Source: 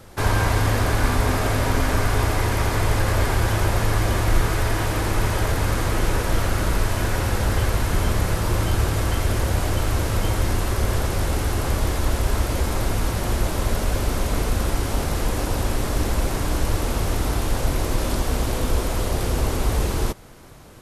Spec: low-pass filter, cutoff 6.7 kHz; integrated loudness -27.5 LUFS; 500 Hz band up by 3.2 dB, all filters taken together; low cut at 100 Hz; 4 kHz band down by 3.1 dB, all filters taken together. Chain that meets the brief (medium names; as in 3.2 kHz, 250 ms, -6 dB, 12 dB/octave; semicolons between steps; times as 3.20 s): high-pass 100 Hz; low-pass 6.7 kHz; peaking EQ 500 Hz +4 dB; peaking EQ 4 kHz -3.5 dB; trim -2.5 dB